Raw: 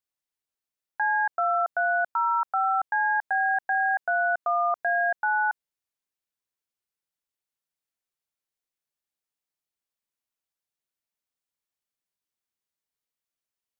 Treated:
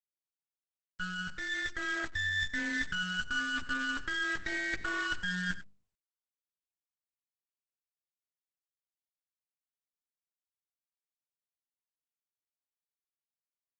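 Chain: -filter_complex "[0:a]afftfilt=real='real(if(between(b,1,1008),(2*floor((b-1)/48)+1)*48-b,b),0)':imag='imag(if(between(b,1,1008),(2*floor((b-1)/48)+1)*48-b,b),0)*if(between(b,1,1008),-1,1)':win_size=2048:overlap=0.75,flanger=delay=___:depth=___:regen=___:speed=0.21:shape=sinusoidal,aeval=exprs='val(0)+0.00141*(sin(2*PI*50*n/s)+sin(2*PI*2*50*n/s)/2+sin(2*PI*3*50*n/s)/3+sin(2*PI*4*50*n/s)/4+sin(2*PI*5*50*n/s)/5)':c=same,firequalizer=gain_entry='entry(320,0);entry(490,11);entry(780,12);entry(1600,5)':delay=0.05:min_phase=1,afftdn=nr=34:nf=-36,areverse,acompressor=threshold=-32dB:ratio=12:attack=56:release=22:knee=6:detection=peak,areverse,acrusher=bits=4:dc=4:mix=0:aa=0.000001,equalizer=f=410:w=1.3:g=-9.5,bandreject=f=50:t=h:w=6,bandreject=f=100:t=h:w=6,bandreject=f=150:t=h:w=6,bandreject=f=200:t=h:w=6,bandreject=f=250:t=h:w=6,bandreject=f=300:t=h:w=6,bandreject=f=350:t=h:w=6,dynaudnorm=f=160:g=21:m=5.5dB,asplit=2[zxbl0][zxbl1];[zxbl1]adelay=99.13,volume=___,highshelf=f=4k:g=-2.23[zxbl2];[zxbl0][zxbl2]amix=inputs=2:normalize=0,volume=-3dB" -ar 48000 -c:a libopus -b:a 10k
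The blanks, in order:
9.1, 6.2, 41, -17dB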